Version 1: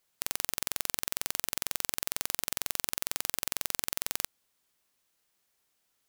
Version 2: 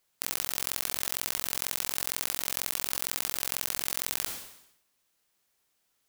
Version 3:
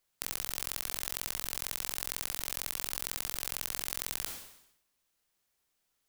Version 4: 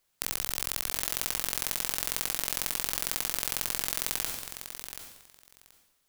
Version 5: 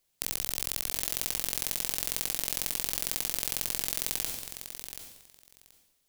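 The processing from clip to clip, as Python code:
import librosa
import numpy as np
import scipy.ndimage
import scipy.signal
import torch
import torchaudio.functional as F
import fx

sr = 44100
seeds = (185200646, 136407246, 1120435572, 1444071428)

y1 = fx.sustainer(x, sr, db_per_s=74.0)
y1 = y1 * librosa.db_to_amplitude(1.0)
y2 = fx.low_shelf(y1, sr, hz=65.0, db=8.5)
y2 = y2 * librosa.db_to_amplitude(-4.5)
y3 = fx.echo_feedback(y2, sr, ms=730, feedback_pct=15, wet_db=-9.5)
y3 = y3 * librosa.db_to_amplitude(4.5)
y4 = fx.peak_eq(y3, sr, hz=1300.0, db=-7.0, octaves=1.3)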